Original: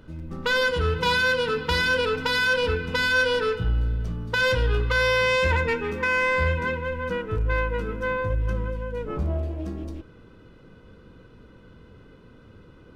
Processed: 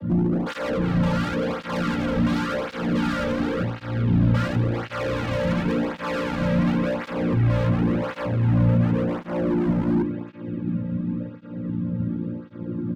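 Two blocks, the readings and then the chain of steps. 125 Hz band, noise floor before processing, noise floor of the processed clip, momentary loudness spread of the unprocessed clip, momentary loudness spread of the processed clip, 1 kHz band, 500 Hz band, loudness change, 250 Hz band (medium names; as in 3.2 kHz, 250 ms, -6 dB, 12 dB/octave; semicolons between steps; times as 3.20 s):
+6.5 dB, -51 dBFS, -39 dBFS, 10 LU, 9 LU, -2.0 dB, -1.5 dB, 0.0 dB, +14.0 dB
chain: vocoder on a held chord major triad, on A#2; peak limiter -21 dBFS, peak gain reduction 9 dB; valve stage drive 30 dB, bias 0.3; bass shelf 470 Hz +9 dB; hum notches 50/100/150/200/250/300 Hz; comb 3.6 ms, depth 93%; band-passed feedback delay 392 ms, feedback 71%, band-pass 2.6 kHz, level -6 dB; overload inside the chain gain 31.5 dB; tone controls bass +13 dB, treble -4 dB; cancelling through-zero flanger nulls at 0.92 Hz, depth 2.9 ms; trim +8.5 dB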